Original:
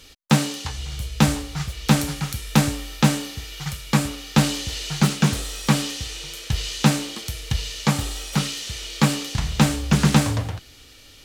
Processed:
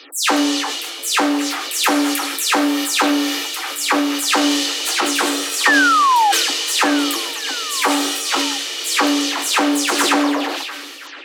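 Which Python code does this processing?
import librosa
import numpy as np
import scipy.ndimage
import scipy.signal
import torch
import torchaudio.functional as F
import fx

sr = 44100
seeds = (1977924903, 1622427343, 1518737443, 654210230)

p1 = fx.spec_delay(x, sr, highs='early', ms=172)
p2 = fx.over_compress(p1, sr, threshold_db=-22.0, ratio=-1.0)
p3 = p1 + F.gain(torch.from_numpy(p2), 1.5).numpy()
p4 = fx.spec_paint(p3, sr, seeds[0], shape='fall', start_s=5.65, length_s=0.67, low_hz=780.0, high_hz=1900.0, level_db=-16.0)
p5 = scipy.signal.sosfilt(scipy.signal.cheby1(6, 3, 270.0, 'highpass', fs=sr, output='sos'), p4)
p6 = p5 + fx.echo_stepped(p5, sr, ms=566, hz=3300.0, octaves=-0.7, feedback_pct=70, wet_db=-12, dry=0)
p7 = fx.sustainer(p6, sr, db_per_s=29.0)
y = F.gain(torch.from_numpy(p7), 3.0).numpy()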